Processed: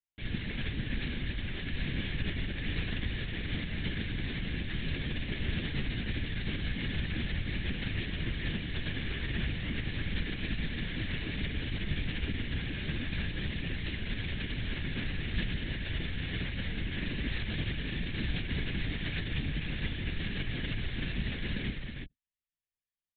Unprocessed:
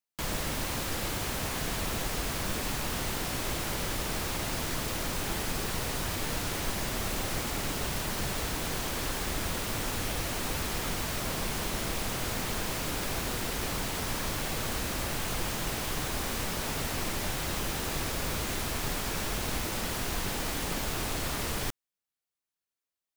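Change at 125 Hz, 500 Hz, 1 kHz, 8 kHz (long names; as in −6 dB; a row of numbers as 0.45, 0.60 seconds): +2.5 dB, −9.0 dB, −16.0 dB, below −40 dB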